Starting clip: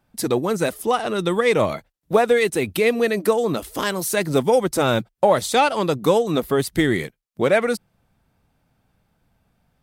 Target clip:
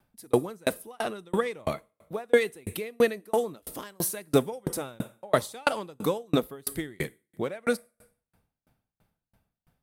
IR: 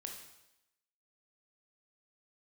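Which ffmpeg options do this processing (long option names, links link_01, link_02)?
-filter_complex "[0:a]asplit=2[link_01][link_02];[link_02]highshelf=frequency=7200:width_type=q:width=1.5:gain=12[link_03];[1:a]atrim=start_sample=2205[link_04];[link_03][link_04]afir=irnorm=-1:irlink=0,volume=-10dB[link_05];[link_01][link_05]amix=inputs=2:normalize=0,aeval=exprs='val(0)*pow(10,-38*if(lt(mod(3*n/s,1),2*abs(3)/1000),1-mod(3*n/s,1)/(2*abs(3)/1000),(mod(3*n/s,1)-2*abs(3)/1000)/(1-2*abs(3)/1000))/20)':channel_layout=same"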